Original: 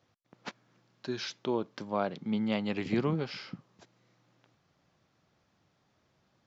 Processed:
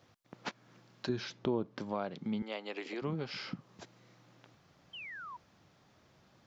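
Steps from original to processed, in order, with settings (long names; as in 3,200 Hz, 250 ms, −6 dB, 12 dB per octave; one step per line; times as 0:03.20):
downward compressor 2.5 to 1, threshold −45 dBFS, peak gain reduction 14 dB
0:01.09–0:01.80: spectral tilt −2.5 dB per octave
0:02.42–0:03.02: high-pass filter 340 Hz 24 dB per octave
0:04.93–0:05.37: sound drawn into the spectrogram fall 930–3,200 Hz −52 dBFS
level +6.5 dB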